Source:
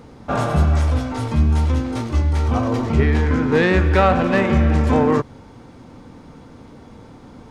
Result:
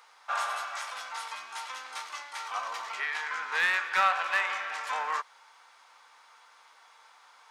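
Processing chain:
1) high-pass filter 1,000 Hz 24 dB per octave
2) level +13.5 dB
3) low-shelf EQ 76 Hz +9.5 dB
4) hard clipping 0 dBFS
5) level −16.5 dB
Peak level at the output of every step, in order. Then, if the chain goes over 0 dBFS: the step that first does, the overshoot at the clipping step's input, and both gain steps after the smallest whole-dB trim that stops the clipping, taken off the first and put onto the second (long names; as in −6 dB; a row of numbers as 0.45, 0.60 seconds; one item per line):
−9.0, +4.5, +4.5, 0.0, −16.5 dBFS
step 2, 4.5 dB
step 2 +8.5 dB, step 5 −11.5 dB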